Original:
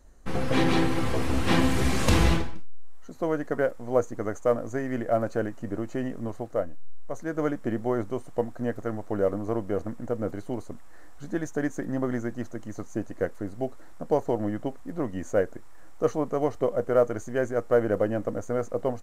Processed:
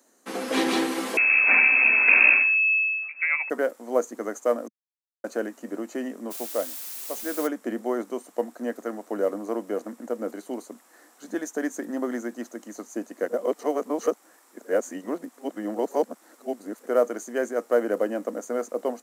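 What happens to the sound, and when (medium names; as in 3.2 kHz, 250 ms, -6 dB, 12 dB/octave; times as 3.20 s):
1.17–3.50 s: frequency inversion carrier 2.6 kHz
4.68–5.24 s: mute
6.30–7.46 s: added noise white -45 dBFS
13.28–16.86 s: reverse
whole clip: steep high-pass 220 Hz 48 dB/octave; treble shelf 5.3 kHz +10.5 dB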